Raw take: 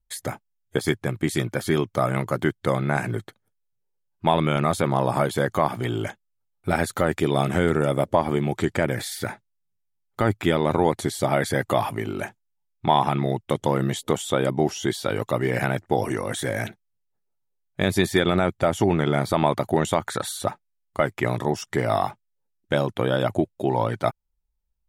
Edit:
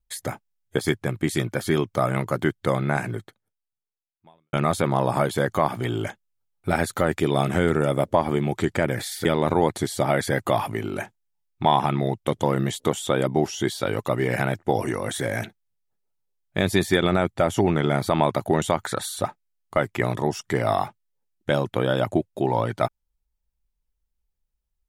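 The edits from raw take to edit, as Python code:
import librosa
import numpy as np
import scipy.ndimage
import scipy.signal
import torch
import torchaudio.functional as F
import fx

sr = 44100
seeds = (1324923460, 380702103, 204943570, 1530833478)

y = fx.edit(x, sr, fx.fade_out_span(start_s=2.91, length_s=1.62, curve='qua'),
    fx.cut(start_s=9.25, length_s=1.23), tone=tone)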